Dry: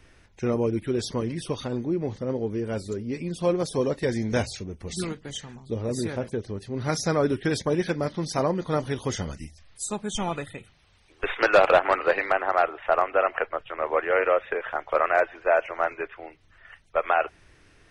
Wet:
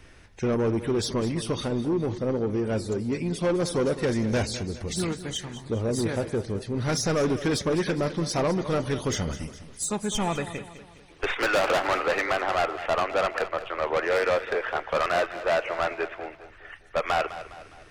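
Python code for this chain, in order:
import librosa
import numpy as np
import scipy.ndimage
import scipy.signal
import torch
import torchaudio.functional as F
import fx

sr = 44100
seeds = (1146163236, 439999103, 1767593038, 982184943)

y = 10.0 ** (-23.5 / 20.0) * np.tanh(x / 10.0 ** (-23.5 / 20.0))
y = fx.echo_feedback(y, sr, ms=205, feedback_pct=46, wet_db=-13.5)
y = F.gain(torch.from_numpy(y), 4.0).numpy()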